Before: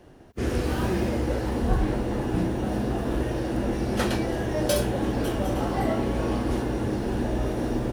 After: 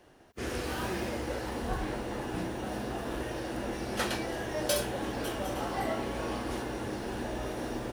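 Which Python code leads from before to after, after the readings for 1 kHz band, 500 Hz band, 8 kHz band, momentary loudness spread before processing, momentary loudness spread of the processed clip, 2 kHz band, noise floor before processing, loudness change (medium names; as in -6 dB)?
-4.0 dB, -7.0 dB, -1.5 dB, 3 LU, 5 LU, -2.5 dB, -33 dBFS, -7.5 dB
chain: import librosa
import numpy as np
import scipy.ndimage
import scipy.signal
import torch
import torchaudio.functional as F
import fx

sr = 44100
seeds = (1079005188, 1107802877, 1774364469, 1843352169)

y = fx.low_shelf(x, sr, hz=460.0, db=-11.5)
y = F.gain(torch.from_numpy(y), -1.5).numpy()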